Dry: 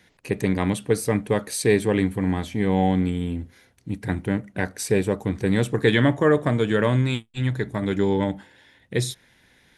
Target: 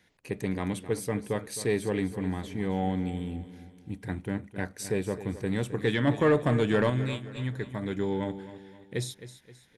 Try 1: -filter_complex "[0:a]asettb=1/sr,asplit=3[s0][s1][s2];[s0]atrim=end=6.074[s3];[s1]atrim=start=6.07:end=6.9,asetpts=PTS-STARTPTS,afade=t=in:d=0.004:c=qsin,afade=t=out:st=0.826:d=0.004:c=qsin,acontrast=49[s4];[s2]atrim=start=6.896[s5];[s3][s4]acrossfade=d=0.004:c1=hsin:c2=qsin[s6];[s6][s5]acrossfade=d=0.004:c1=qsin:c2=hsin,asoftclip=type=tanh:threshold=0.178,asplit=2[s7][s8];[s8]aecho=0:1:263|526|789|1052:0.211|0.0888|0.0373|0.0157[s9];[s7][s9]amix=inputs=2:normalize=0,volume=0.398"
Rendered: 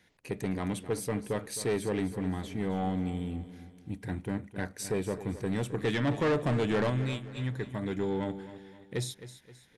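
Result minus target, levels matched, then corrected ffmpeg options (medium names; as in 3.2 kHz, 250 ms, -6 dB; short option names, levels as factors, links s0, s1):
saturation: distortion +13 dB
-filter_complex "[0:a]asettb=1/sr,asplit=3[s0][s1][s2];[s0]atrim=end=6.074[s3];[s1]atrim=start=6.07:end=6.9,asetpts=PTS-STARTPTS,afade=t=in:d=0.004:c=qsin,afade=t=out:st=0.826:d=0.004:c=qsin,acontrast=49[s4];[s2]atrim=start=6.896[s5];[s3][s4]acrossfade=d=0.004:c1=hsin:c2=qsin[s6];[s6][s5]acrossfade=d=0.004:c1=qsin:c2=hsin,asoftclip=type=tanh:threshold=0.562,asplit=2[s7][s8];[s8]aecho=0:1:263|526|789|1052:0.211|0.0888|0.0373|0.0157[s9];[s7][s9]amix=inputs=2:normalize=0,volume=0.398"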